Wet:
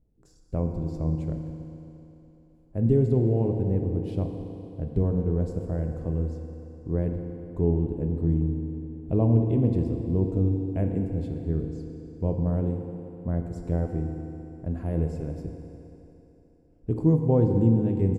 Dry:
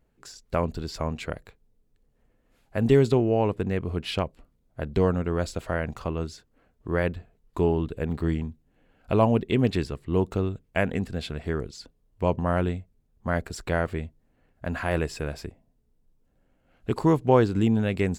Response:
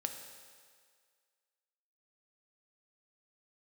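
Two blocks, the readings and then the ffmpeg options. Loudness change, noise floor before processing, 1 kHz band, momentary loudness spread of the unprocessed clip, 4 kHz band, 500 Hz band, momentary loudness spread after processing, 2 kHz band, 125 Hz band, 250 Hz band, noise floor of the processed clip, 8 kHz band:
−0.5 dB, −69 dBFS, −12.0 dB, 16 LU, below −20 dB, −4.0 dB, 16 LU, below −20 dB, +4.0 dB, +1.0 dB, −57 dBFS, below −15 dB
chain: -filter_complex "[0:a]firequalizer=gain_entry='entry(110,0);entry(1300,-25);entry(4000,-27);entry(6400,-20)':delay=0.05:min_phase=1[link_01];[1:a]atrim=start_sample=2205,asetrate=25137,aresample=44100[link_02];[link_01][link_02]afir=irnorm=-1:irlink=0"

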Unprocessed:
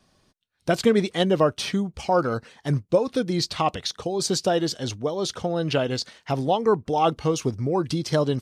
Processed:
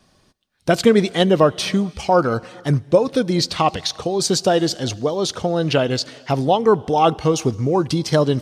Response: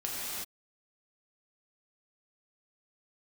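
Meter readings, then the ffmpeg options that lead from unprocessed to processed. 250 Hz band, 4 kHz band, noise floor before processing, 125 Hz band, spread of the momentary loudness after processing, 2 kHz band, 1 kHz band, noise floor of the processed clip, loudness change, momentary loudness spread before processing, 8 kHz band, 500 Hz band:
+5.5 dB, +5.5 dB, −68 dBFS, +5.5 dB, 7 LU, +5.5 dB, +5.5 dB, −59 dBFS, +5.5 dB, 7 LU, +5.5 dB, +5.5 dB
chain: -filter_complex "[0:a]asplit=2[link_01][link_02];[1:a]atrim=start_sample=2205,adelay=73[link_03];[link_02][link_03]afir=irnorm=-1:irlink=0,volume=-27.5dB[link_04];[link_01][link_04]amix=inputs=2:normalize=0,volume=5.5dB"

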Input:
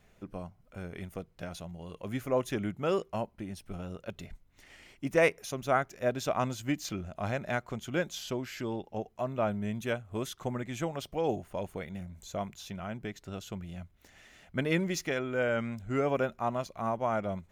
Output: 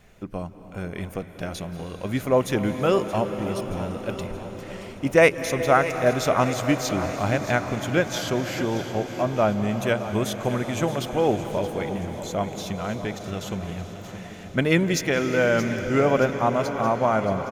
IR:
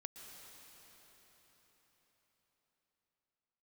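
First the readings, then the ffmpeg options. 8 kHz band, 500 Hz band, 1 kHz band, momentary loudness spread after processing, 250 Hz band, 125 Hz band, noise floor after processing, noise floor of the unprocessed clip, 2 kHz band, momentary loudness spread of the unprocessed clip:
+9.5 dB, +9.5 dB, +9.5 dB, 14 LU, +9.5 dB, +10.0 dB, −40 dBFS, −64 dBFS, +9.5 dB, 13 LU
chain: -filter_complex "[0:a]aecho=1:1:624|1248|1872|2496|3120|3744:0.211|0.116|0.0639|0.0352|0.0193|0.0106,asplit=2[link_01][link_02];[1:a]atrim=start_sample=2205,asetrate=29106,aresample=44100[link_03];[link_02][link_03]afir=irnorm=-1:irlink=0,volume=2.5dB[link_04];[link_01][link_04]amix=inputs=2:normalize=0,volume=3.5dB"

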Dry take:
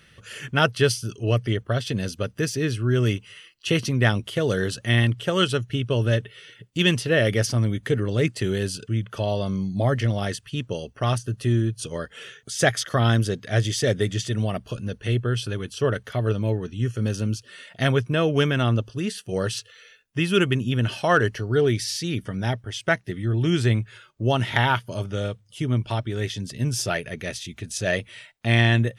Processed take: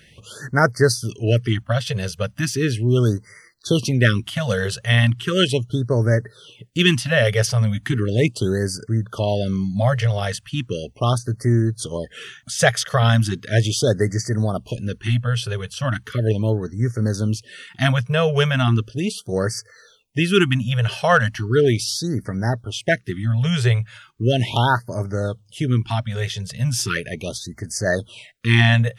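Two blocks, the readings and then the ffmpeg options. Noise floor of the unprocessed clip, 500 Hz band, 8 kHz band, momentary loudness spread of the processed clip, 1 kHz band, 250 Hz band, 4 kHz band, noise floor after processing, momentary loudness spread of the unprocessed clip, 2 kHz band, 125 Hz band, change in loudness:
−55 dBFS, +3.0 dB, +4.0 dB, 10 LU, +3.5 dB, +3.0 dB, +3.5 dB, −53 dBFS, 10 LU, +3.5 dB, +4.0 dB, +3.5 dB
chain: -af "afftfilt=real='re*(1-between(b*sr/1024,270*pow(3200/270,0.5+0.5*sin(2*PI*0.37*pts/sr))/1.41,270*pow(3200/270,0.5+0.5*sin(2*PI*0.37*pts/sr))*1.41))':imag='im*(1-between(b*sr/1024,270*pow(3200/270,0.5+0.5*sin(2*PI*0.37*pts/sr))/1.41,270*pow(3200/270,0.5+0.5*sin(2*PI*0.37*pts/sr))*1.41))':win_size=1024:overlap=0.75,volume=4dB"

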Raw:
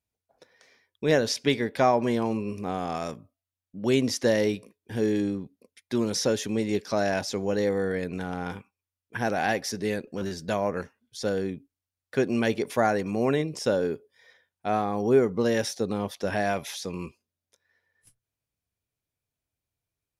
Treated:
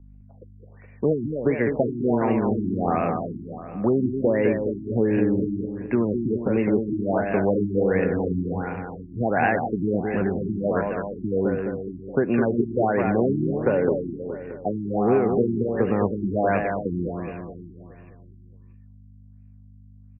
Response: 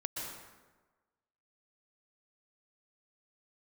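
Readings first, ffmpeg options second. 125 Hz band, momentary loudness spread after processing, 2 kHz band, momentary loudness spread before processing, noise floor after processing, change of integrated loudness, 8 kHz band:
+6.0 dB, 9 LU, +1.0 dB, 13 LU, −48 dBFS, +3.0 dB, below −40 dB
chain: -filter_complex "[0:a]aeval=exprs='val(0)+0.002*(sin(2*PI*50*n/s)+sin(2*PI*2*50*n/s)/2+sin(2*PI*3*50*n/s)/3+sin(2*PI*4*50*n/s)/4+sin(2*PI*5*50*n/s)/5)':channel_layout=same,acrossover=split=180|1500[link_01][link_02][link_03];[link_03]acrusher=bits=2:mode=log:mix=0:aa=0.000001[link_04];[link_01][link_02][link_04]amix=inputs=3:normalize=0,acompressor=threshold=-25dB:ratio=6,aecho=1:1:209|418|627|836|1045|1254|1463|1672:0.531|0.308|0.179|0.104|0.0601|0.0348|0.0202|0.0117,afftfilt=real='re*lt(b*sr/1024,370*pow(2900/370,0.5+0.5*sin(2*PI*1.4*pts/sr)))':imag='im*lt(b*sr/1024,370*pow(2900/370,0.5+0.5*sin(2*PI*1.4*pts/sr)))':win_size=1024:overlap=0.75,volume=8dB"

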